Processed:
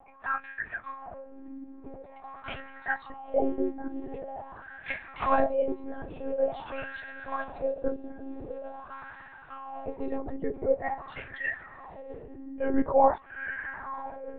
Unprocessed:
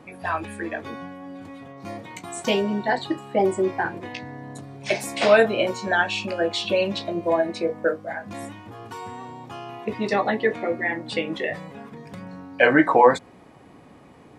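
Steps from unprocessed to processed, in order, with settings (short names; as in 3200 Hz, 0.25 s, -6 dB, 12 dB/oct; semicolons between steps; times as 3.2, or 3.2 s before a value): diffused feedback echo 0.856 s, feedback 57%, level -14 dB; wah 0.46 Hz 300–1700 Hz, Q 6.1; monotone LPC vocoder at 8 kHz 270 Hz; gain +4 dB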